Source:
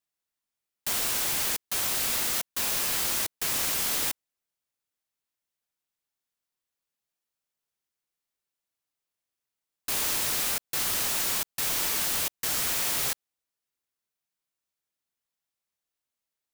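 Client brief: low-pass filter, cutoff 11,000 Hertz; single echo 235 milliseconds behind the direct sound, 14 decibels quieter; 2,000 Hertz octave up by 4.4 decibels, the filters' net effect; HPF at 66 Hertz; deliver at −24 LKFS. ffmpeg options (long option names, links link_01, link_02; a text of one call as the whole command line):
ffmpeg -i in.wav -af "highpass=66,lowpass=11000,equalizer=frequency=2000:width_type=o:gain=5.5,aecho=1:1:235:0.2,volume=3.5dB" out.wav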